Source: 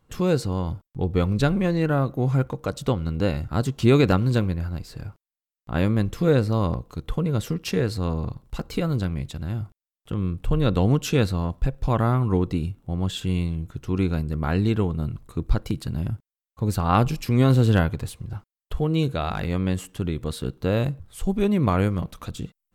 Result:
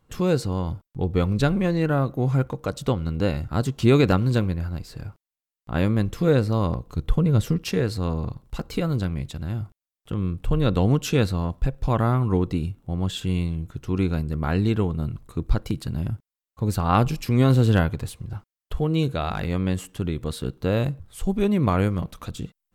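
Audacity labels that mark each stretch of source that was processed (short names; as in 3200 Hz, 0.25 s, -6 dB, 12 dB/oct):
6.870000	7.640000	low shelf 170 Hz +8.5 dB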